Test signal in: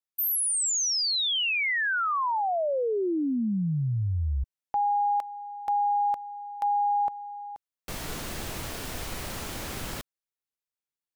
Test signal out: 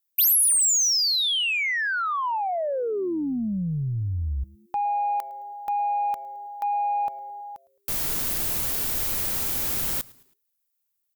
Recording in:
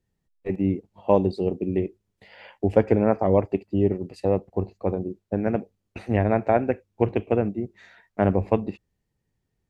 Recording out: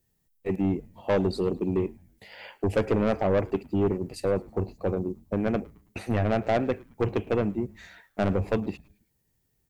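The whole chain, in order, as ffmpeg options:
ffmpeg -i in.wav -filter_complex "[0:a]asplit=2[link_01][link_02];[link_02]acontrast=45,volume=-2dB[link_03];[link_01][link_03]amix=inputs=2:normalize=0,aemphasis=mode=production:type=50fm,asoftclip=type=tanh:threshold=-10.5dB,asplit=4[link_04][link_05][link_06][link_07];[link_05]adelay=108,afreqshift=-140,volume=-23dB[link_08];[link_06]adelay=216,afreqshift=-280,volume=-30.3dB[link_09];[link_07]adelay=324,afreqshift=-420,volume=-37.7dB[link_10];[link_04][link_08][link_09][link_10]amix=inputs=4:normalize=0,volume=-7dB" out.wav

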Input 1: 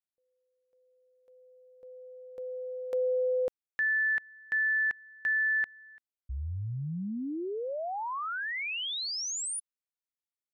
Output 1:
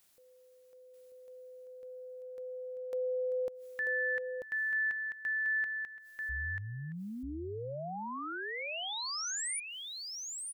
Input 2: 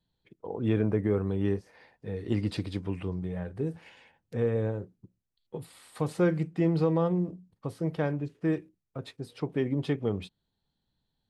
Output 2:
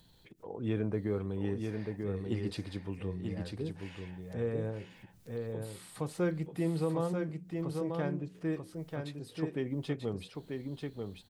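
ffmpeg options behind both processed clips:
ffmpeg -i in.wav -filter_complex "[0:a]highshelf=frequency=4700:gain=5.5,acompressor=mode=upward:threshold=-35dB:ratio=2.5:attack=0.33:release=88:knee=2.83:detection=peak,asplit=2[link_01][link_02];[link_02]aecho=0:1:939:0.596[link_03];[link_01][link_03]amix=inputs=2:normalize=0,volume=-6.5dB" out.wav

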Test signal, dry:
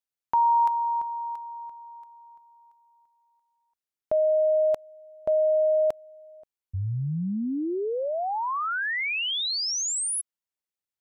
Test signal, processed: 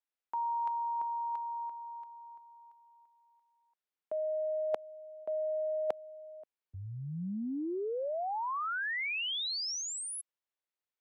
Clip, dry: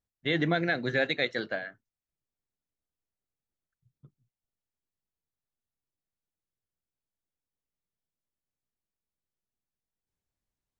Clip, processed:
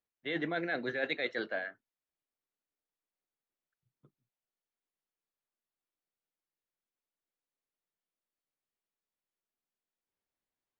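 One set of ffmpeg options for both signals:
ffmpeg -i in.wav -filter_complex "[0:a]acrossover=split=240 3900:gain=0.178 1 0.251[link_01][link_02][link_03];[link_01][link_02][link_03]amix=inputs=3:normalize=0,areverse,acompressor=threshold=-36dB:ratio=5:attack=41:release=86:knee=1:detection=peak,areverse" out.wav

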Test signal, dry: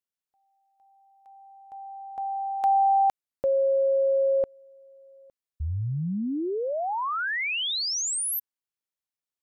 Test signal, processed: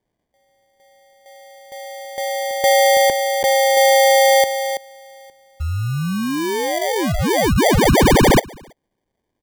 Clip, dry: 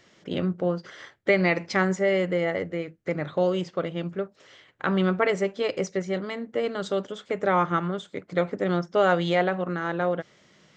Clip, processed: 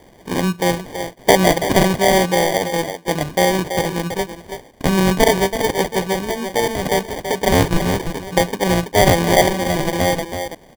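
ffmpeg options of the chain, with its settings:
ffmpeg -i in.wav -filter_complex "[0:a]highshelf=frequency=2400:gain=10.5,asplit=2[link_01][link_02];[link_02]adelay=330,highpass=300,lowpass=3400,asoftclip=type=hard:threshold=-15.5dB,volume=-7dB[link_03];[link_01][link_03]amix=inputs=2:normalize=0,acrusher=samples=33:mix=1:aa=0.000001,volume=7dB" out.wav

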